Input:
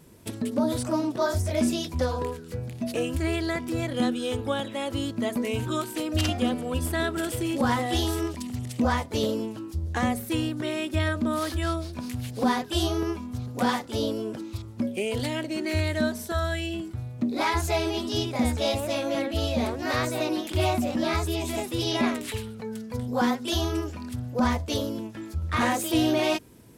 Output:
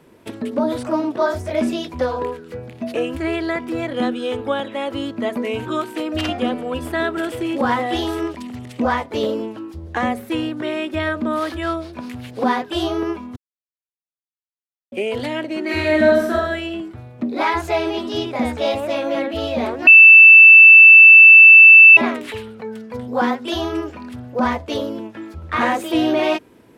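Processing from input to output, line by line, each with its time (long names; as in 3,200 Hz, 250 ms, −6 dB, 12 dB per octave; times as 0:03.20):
0:13.36–0:14.92: silence
0:15.64–0:16.33: thrown reverb, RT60 0.86 s, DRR −3.5 dB
0:19.87–0:21.97: beep over 2,650 Hz −7 dBFS
whole clip: three-way crossover with the lows and the highs turned down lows −12 dB, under 240 Hz, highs −14 dB, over 3,300 Hz; level +7 dB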